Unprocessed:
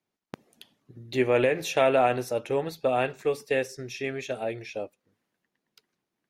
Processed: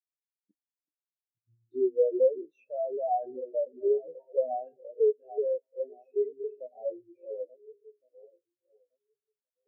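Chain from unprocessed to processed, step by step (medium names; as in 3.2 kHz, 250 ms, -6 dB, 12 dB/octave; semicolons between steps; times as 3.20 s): backward echo that repeats 461 ms, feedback 62%, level -10.5 dB; in parallel at -9 dB: sample-rate reducer 5.1 kHz, jitter 0%; on the sum: saturation -22.5 dBFS, distortion -8 dB; bass shelf 360 Hz +3.5 dB; compression 5:1, threshold -30 dBFS, peak gain reduction 7.5 dB; band-passed feedback delay 128 ms, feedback 66%, band-pass 1.4 kHz, level -23 dB; on a send at -10 dB: reverberation RT60 1.7 s, pre-delay 5 ms; on the sum: dynamic bell 140 Hz, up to -7 dB, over -52 dBFS, Q 1.6; tempo 0.65×; spectral contrast expander 4:1; trim +8.5 dB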